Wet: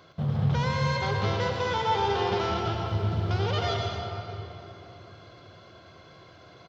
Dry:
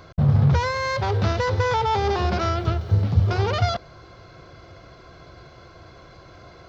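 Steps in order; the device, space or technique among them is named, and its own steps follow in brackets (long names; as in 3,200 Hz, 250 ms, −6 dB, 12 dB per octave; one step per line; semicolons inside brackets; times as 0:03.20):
PA in a hall (high-pass filter 130 Hz 12 dB per octave; parametric band 3,200 Hz +8 dB 0.36 octaves; single-tap delay 120 ms −8 dB; convolution reverb RT60 3.2 s, pre-delay 84 ms, DRR 1 dB)
level −7.5 dB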